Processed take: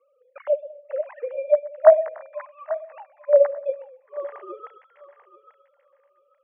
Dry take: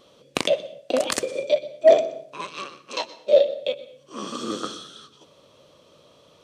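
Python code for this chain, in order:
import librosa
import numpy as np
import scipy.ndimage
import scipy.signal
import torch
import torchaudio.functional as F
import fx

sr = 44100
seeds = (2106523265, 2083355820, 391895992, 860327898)

y = fx.sine_speech(x, sr)
y = scipy.signal.sosfilt(scipy.signal.ellip(3, 1.0, 40, [320.0, 2000.0], 'bandpass', fs=sr, output='sos'), y)
y = fx.echo_thinned(y, sr, ms=839, feedback_pct=27, hz=1100.0, wet_db=-10.0)
y = y * librosa.db_to_amplitude(1.0)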